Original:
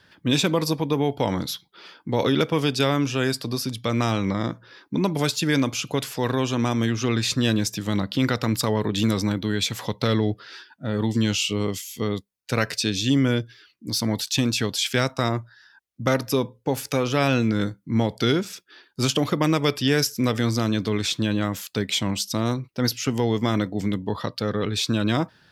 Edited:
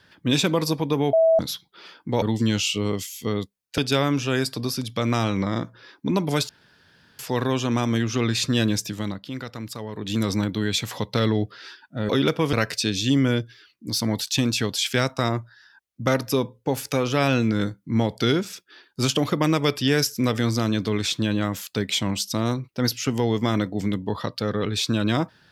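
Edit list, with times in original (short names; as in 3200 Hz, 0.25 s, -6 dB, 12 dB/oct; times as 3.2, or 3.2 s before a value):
1.13–1.39 bleep 651 Hz -13.5 dBFS
2.22–2.66 swap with 10.97–12.53
5.37–6.07 room tone
7.71–9.2 dip -11 dB, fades 0.40 s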